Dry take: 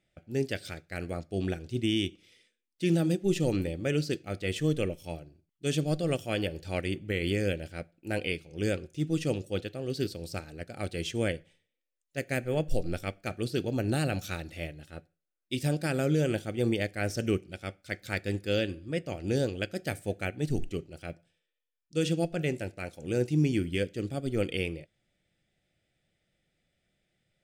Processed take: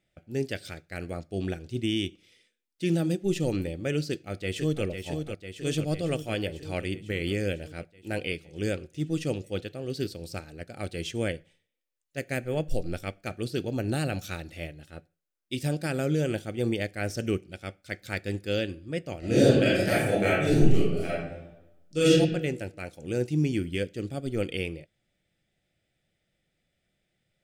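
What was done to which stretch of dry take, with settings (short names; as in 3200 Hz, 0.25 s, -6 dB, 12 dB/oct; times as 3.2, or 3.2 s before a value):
4.08–4.84 echo throw 0.5 s, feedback 70%, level -6.5 dB
19.19–22.11 reverb throw, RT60 0.97 s, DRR -10 dB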